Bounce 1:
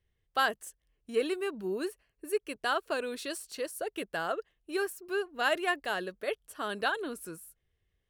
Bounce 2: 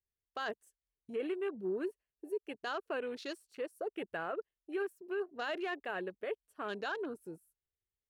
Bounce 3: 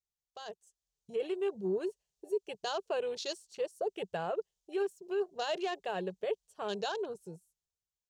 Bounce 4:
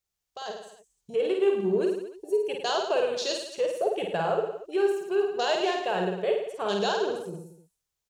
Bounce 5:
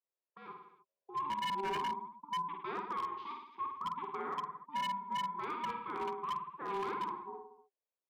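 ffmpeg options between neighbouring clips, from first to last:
ffmpeg -i in.wav -af "afwtdn=0.00708,equalizer=frequency=400:width=2.5:gain=3.5,alimiter=level_in=0.5dB:limit=-24dB:level=0:latency=1:release=20,volume=-0.5dB,volume=-4.5dB" out.wav
ffmpeg -i in.wav -af "firequalizer=gain_entry='entry(110,0);entry(180,6);entry(260,-17);entry(390,0);entry(860,1);entry(1300,-9);entry(2100,-8);entry(3100,2);entry(6600,10);entry(11000,-5)':delay=0.05:min_phase=1,dynaudnorm=framelen=110:gausssize=17:maxgain=11dB,volume=-6.5dB" out.wav
ffmpeg -i in.wav -af "aecho=1:1:50|105|165.5|232|305.3:0.631|0.398|0.251|0.158|0.1,volume=7dB" out.wav
ffmpeg -i in.wav -af "aeval=exprs='val(0)*sin(2*PI*590*n/s)':channel_layout=same,highpass=frequency=250:width=0.5412,highpass=frequency=250:width=1.3066,equalizer=frequency=260:width_type=q:width=4:gain=-7,equalizer=frequency=380:width_type=q:width=4:gain=9,equalizer=frequency=610:width_type=q:width=4:gain=-7,equalizer=frequency=950:width_type=q:width=4:gain=5,equalizer=frequency=1400:width_type=q:width=4:gain=-7,equalizer=frequency=2000:width_type=q:width=4:gain=-6,lowpass=frequency=2300:width=0.5412,lowpass=frequency=2300:width=1.3066,aeval=exprs='0.0631*(abs(mod(val(0)/0.0631+3,4)-2)-1)':channel_layout=same,volume=-6.5dB" out.wav

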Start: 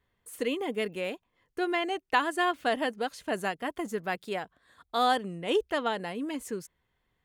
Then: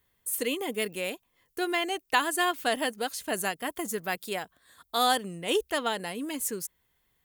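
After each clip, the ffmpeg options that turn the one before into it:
ffmpeg -i in.wav -af "aemphasis=mode=production:type=75fm" out.wav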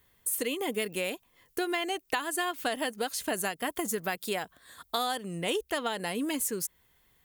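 ffmpeg -i in.wav -af "acompressor=threshold=-34dB:ratio=6,volume=6dB" out.wav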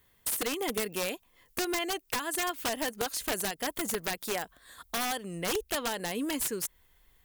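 ffmpeg -i in.wav -af "asubboost=boost=5:cutoff=52,aeval=exprs='(mod(14.1*val(0)+1,2)-1)/14.1':channel_layout=same" out.wav

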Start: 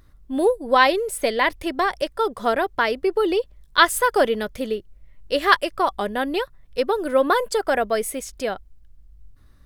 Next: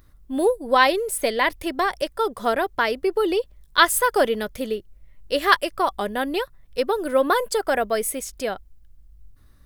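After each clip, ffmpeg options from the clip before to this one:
ffmpeg -i in.wav -af "highshelf=frequency=9400:gain=8,volume=-1dB" out.wav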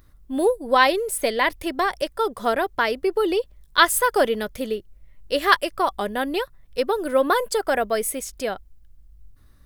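ffmpeg -i in.wav -af anull out.wav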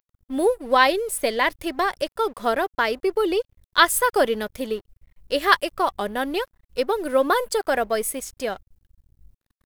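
ffmpeg -i in.wav -af "aeval=exprs='sgn(val(0))*max(abs(val(0))-0.00501,0)':channel_layout=same" out.wav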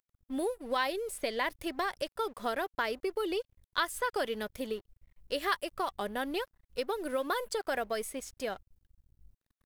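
ffmpeg -i in.wav -filter_complex "[0:a]acrossover=split=1600|7000[link_01][link_02][link_03];[link_01]acompressor=threshold=-23dB:ratio=4[link_04];[link_02]acompressor=threshold=-27dB:ratio=4[link_05];[link_03]acompressor=threshold=-39dB:ratio=4[link_06];[link_04][link_05][link_06]amix=inputs=3:normalize=0,volume=-7.5dB" out.wav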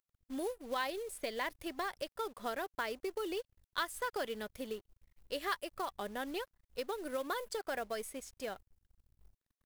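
ffmpeg -i in.wav -af "acrusher=bits=4:mode=log:mix=0:aa=0.000001,volume=-5.5dB" out.wav

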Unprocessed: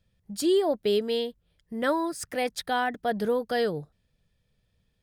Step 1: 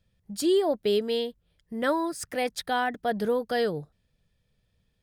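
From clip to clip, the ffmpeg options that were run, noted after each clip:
ffmpeg -i in.wav -af anull out.wav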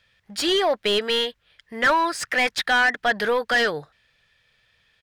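ffmpeg -i in.wav -filter_complex "[0:a]firequalizer=gain_entry='entry(120,0);entry(170,-7);entry(1700,10);entry(9100,3)':delay=0.05:min_phase=1,asplit=2[link_01][link_02];[link_02]highpass=frequency=720:poles=1,volume=19dB,asoftclip=type=tanh:threshold=-9.5dB[link_03];[link_01][link_03]amix=inputs=2:normalize=0,lowpass=frequency=2300:poles=1,volume=-6dB" out.wav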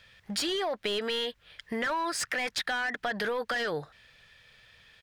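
ffmpeg -i in.wav -af "alimiter=limit=-21.5dB:level=0:latency=1:release=28,acompressor=threshold=-36dB:ratio=4,volume=6dB" out.wav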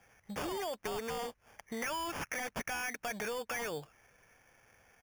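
ffmpeg -i in.wav -af "acrusher=samples=11:mix=1:aa=0.000001,volume=-7dB" out.wav

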